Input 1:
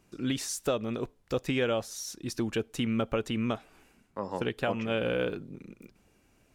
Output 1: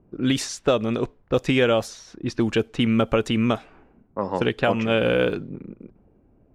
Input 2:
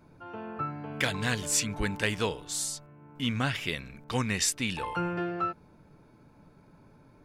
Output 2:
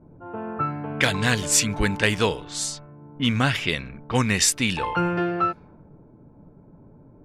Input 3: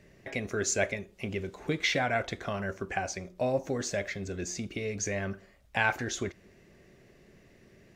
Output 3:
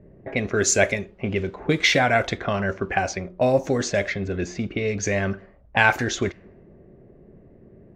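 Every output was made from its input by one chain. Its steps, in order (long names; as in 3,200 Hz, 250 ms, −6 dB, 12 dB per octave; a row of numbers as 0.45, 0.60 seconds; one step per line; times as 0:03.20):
low-pass that shuts in the quiet parts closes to 560 Hz, open at −26.5 dBFS
loudness normalisation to −23 LKFS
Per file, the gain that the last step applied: +9.0, +8.0, +9.5 decibels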